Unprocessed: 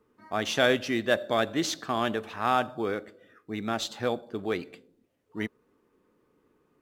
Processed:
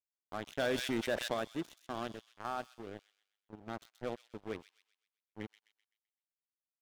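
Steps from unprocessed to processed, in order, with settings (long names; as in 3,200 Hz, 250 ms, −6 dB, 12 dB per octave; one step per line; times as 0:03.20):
adaptive Wiener filter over 41 samples
high-shelf EQ 4,600 Hz −7.5 dB
notch filter 4,600 Hz, Q 5
dead-zone distortion −35.5 dBFS
0:02.07–0:03.69: output level in coarse steps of 10 dB
soft clipping −21 dBFS, distortion −11 dB
delay with a high-pass on its return 128 ms, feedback 41%, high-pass 3,600 Hz, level −6 dB
0:00.58–0:01.34: envelope flattener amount 70%
level −5.5 dB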